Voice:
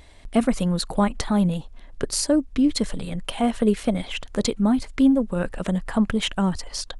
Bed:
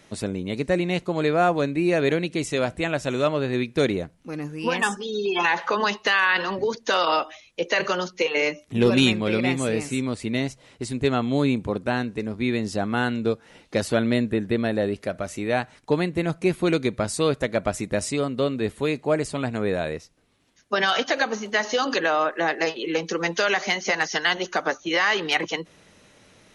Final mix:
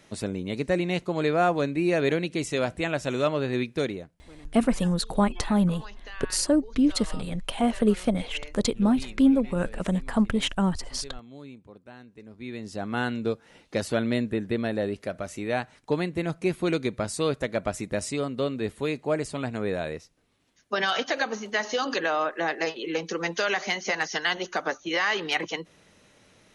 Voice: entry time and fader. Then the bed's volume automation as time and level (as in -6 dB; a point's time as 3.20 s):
4.20 s, -2.0 dB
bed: 3.65 s -2.5 dB
4.57 s -22.5 dB
11.98 s -22.5 dB
12.98 s -4 dB